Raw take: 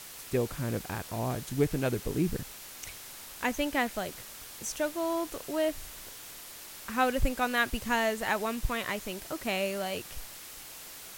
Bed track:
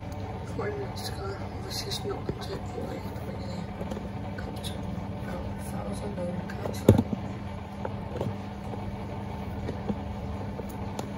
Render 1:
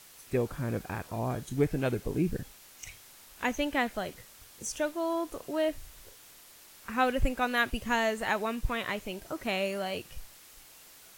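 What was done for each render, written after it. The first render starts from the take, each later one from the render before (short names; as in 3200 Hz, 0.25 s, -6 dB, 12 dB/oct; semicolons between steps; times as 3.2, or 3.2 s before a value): noise print and reduce 8 dB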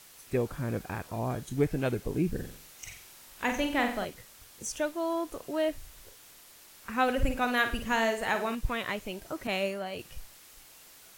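2.32–4.05 flutter echo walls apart 7.8 m, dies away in 0.49 s; 7.03–8.55 flutter echo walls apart 9.1 m, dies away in 0.38 s; 9.47–9.99 three-band expander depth 100%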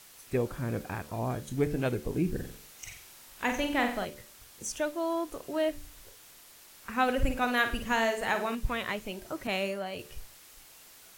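de-hum 73.44 Hz, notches 8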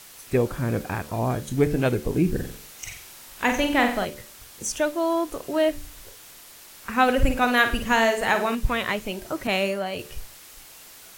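gain +7.5 dB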